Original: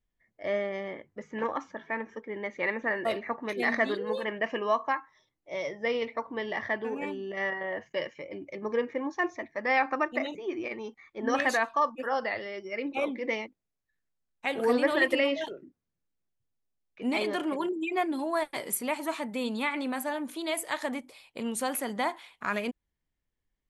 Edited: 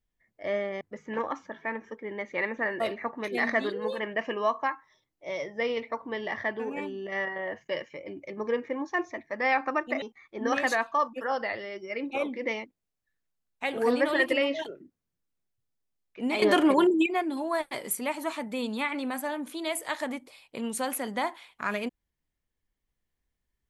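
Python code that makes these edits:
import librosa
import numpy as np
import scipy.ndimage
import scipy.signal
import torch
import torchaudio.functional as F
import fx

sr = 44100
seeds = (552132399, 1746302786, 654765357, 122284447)

y = fx.edit(x, sr, fx.cut(start_s=0.81, length_s=0.25),
    fx.cut(start_s=10.27, length_s=0.57),
    fx.clip_gain(start_s=17.24, length_s=0.64, db=9.5), tone=tone)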